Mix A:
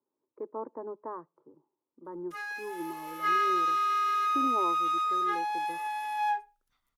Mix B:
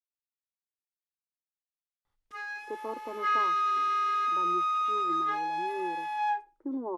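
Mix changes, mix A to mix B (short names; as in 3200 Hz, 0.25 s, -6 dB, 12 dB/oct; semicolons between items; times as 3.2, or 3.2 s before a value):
speech: entry +2.30 s; master: add air absorption 61 m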